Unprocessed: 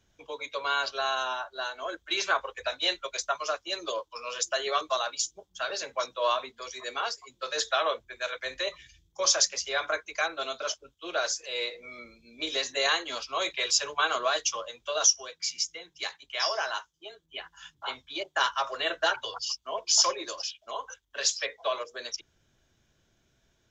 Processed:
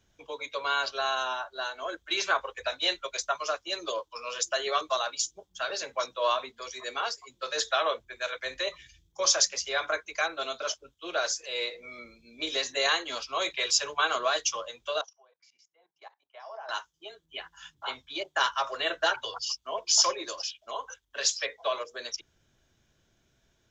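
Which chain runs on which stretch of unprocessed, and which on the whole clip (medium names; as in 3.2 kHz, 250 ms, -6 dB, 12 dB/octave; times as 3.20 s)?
15.01–16.69 s: level held to a coarse grid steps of 18 dB + band-pass filter 780 Hz, Q 2.7
whole clip: none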